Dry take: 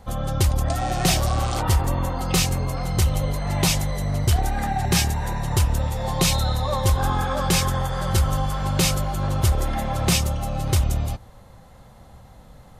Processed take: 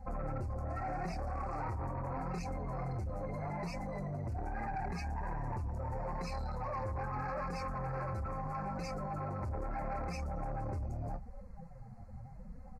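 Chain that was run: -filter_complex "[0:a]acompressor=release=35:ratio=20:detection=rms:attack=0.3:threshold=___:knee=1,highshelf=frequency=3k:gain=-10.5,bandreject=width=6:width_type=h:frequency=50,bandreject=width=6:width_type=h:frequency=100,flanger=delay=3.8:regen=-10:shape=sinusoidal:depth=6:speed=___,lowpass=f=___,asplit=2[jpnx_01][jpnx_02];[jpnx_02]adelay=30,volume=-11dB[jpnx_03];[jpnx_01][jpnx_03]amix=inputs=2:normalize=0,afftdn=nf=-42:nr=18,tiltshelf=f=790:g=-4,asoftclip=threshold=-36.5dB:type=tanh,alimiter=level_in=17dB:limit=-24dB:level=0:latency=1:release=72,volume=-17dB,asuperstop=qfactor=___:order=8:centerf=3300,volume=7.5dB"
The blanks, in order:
-26dB, 0.79, 11k, 1.9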